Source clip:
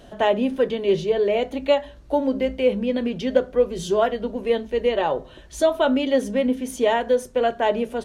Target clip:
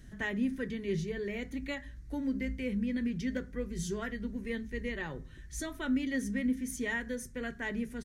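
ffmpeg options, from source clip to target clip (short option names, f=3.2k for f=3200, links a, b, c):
-af "firequalizer=gain_entry='entry(110,0);entry(620,-28);entry(1900,-2);entry(2800,-17);entry(5800,-5)':delay=0.05:min_phase=1"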